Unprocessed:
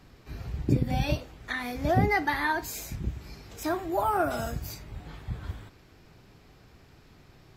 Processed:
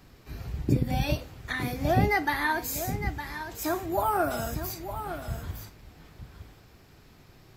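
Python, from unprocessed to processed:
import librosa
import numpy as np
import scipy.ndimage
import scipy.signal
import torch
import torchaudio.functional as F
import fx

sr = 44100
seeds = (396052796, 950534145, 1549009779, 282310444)

y = fx.high_shelf(x, sr, hz=10000.0, db=9.5)
y = y + 10.0 ** (-10.0 / 20.0) * np.pad(y, (int(910 * sr / 1000.0), 0))[:len(y)]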